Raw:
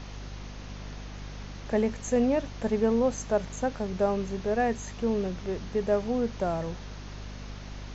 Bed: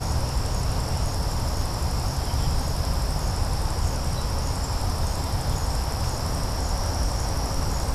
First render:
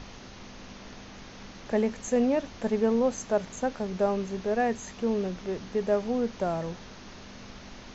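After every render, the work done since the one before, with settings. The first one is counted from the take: hum notches 50/100/150 Hz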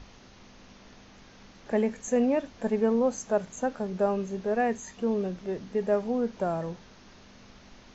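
noise print and reduce 7 dB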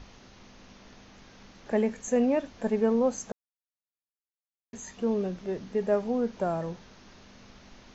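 3.32–4.73 s: mute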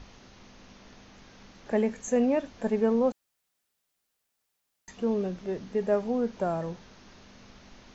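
3.12–4.88 s: room tone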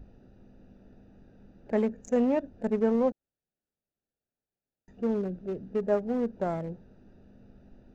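local Wiener filter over 41 samples; dynamic bell 3.2 kHz, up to -3 dB, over -46 dBFS, Q 0.72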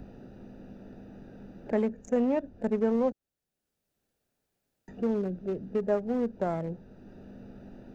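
three bands compressed up and down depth 40%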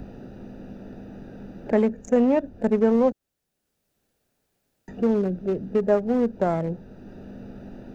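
trim +7 dB

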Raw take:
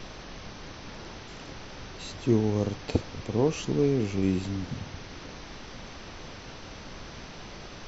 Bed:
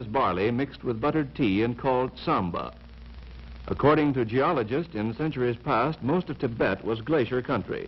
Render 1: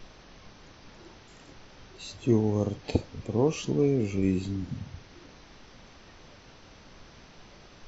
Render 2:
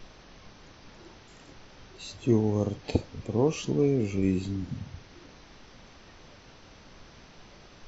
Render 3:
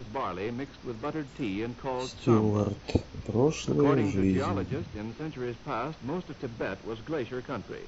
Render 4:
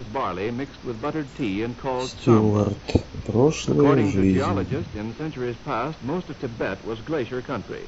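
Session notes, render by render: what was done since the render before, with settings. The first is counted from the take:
noise print and reduce 9 dB
no audible change
add bed -8.5 dB
trim +6.5 dB

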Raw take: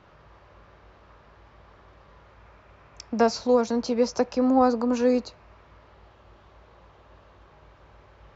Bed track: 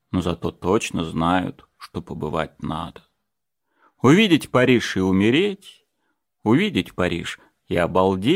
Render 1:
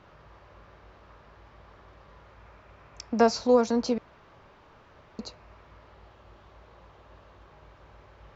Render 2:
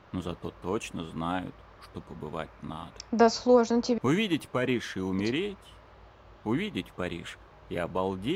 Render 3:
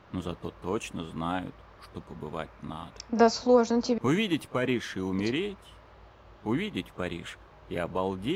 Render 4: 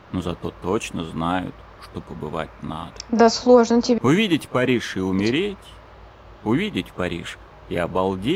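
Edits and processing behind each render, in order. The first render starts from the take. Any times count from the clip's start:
3.98–5.19 s: room tone
add bed track -12 dB
pre-echo 35 ms -22 dB
trim +8.5 dB; peak limiter -3 dBFS, peak gain reduction 3 dB

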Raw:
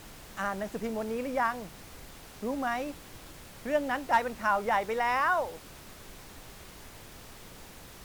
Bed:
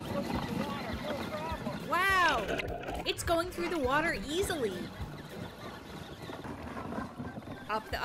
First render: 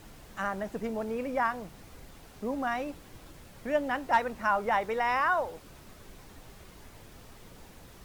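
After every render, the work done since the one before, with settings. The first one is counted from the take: noise reduction 6 dB, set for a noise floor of -49 dBFS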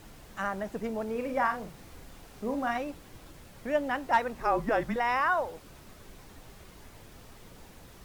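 1.11–2.78 s: doubling 42 ms -7 dB; 4.40–4.96 s: frequency shift -240 Hz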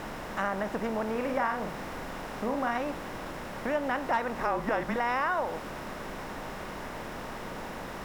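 spectral levelling over time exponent 0.6; compression 2:1, threshold -28 dBFS, peak gain reduction 6 dB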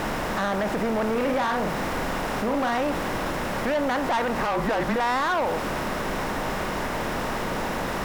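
waveshaping leveller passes 3; peak limiter -19.5 dBFS, peak gain reduction 3.5 dB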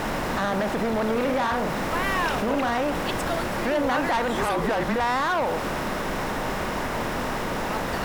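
add bed -0.5 dB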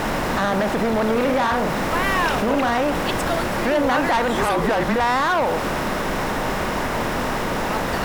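trim +4.5 dB

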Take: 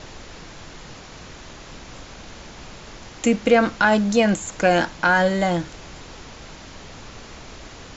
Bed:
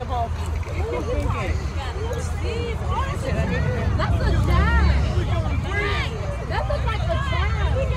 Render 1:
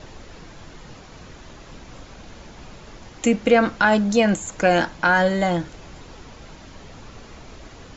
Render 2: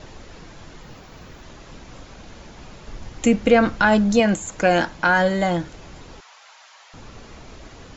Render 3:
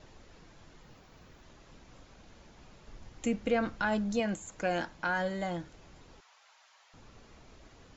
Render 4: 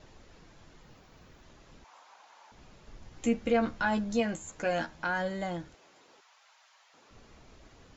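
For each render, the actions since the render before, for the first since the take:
noise reduction 6 dB, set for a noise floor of -41 dBFS
0.82–1.43 s: decimation joined by straight lines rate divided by 2×; 2.87–4.20 s: bass shelf 120 Hz +10 dB; 6.20–6.94 s: inverse Chebyshev high-pass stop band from 230 Hz, stop band 60 dB
trim -14 dB
1.84–2.52 s: resonant high-pass 890 Hz, resonance Q 3.4; 3.11–5.04 s: doubling 13 ms -5 dB; 5.74–7.11 s: high-pass 380 Hz

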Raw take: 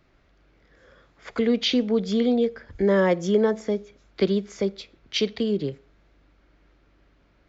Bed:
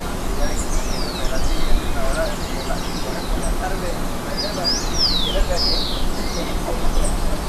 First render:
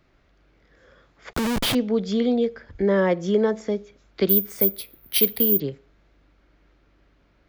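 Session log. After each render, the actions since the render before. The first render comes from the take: 1.33–1.75 s: Schmitt trigger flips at -29 dBFS; 2.71–3.28 s: distance through air 71 m; 4.29–5.60 s: careless resampling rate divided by 3×, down filtered, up zero stuff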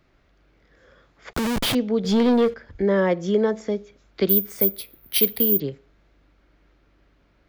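2.04–2.54 s: waveshaping leveller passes 2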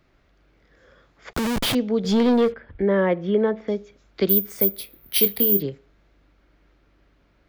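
2.52–3.68 s: low-pass 3.3 kHz 24 dB/octave; 4.76–5.66 s: doubling 25 ms -8 dB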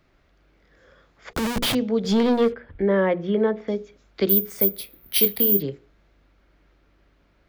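hum notches 60/120/180/240/300/360/420/480 Hz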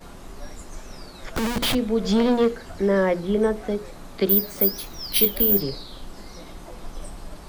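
add bed -17 dB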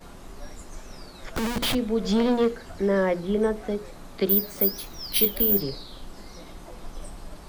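trim -2.5 dB

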